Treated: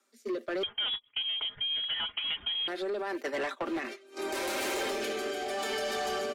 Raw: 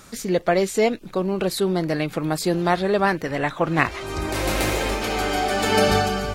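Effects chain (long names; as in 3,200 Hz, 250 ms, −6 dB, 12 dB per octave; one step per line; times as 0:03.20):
noise gate −26 dBFS, range −23 dB
Butterworth high-pass 230 Hz 96 dB per octave
comb filter 5.1 ms, depth 59%
brickwall limiter −15 dBFS, peak gain reduction 11 dB
downward compressor, threshold −24 dBFS, peak gain reduction 6 dB
rotating-speaker cabinet horn 0.8 Hz
soft clipping −27.5 dBFS, distortion −13 dB
0:00.63–0:02.68: voice inversion scrambler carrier 3,600 Hz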